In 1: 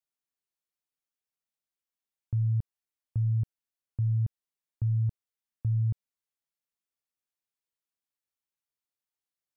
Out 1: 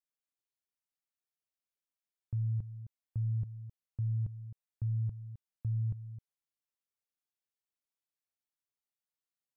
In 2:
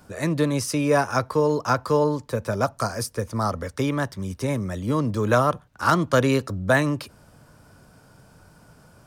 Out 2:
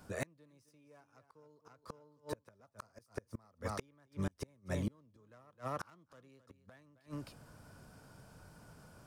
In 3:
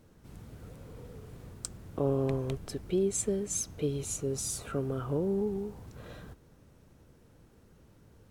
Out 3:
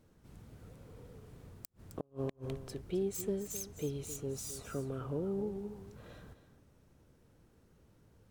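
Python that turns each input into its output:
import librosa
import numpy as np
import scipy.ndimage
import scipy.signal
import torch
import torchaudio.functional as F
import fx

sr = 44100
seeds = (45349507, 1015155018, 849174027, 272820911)

y = fx.self_delay(x, sr, depth_ms=0.07)
y = y + 10.0 ** (-12.5 / 20.0) * np.pad(y, (int(262 * sr / 1000.0), 0))[:len(y)]
y = fx.gate_flip(y, sr, shuts_db=-19.0, range_db=-36)
y = F.gain(torch.from_numpy(y), -6.0).numpy()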